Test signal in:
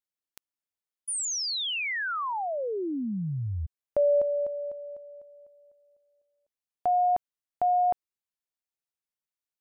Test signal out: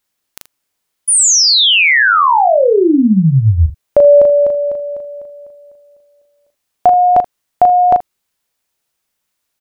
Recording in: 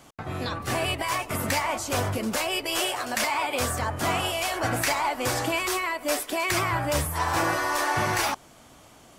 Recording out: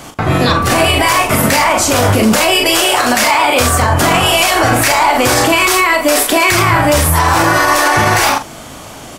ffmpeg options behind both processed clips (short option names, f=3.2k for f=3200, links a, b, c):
-filter_complex "[0:a]asplit=2[a][b];[b]aecho=0:1:37|80:0.562|0.15[c];[a][c]amix=inputs=2:normalize=0,alimiter=level_in=20.5dB:limit=-1dB:release=50:level=0:latency=1,volume=-1dB"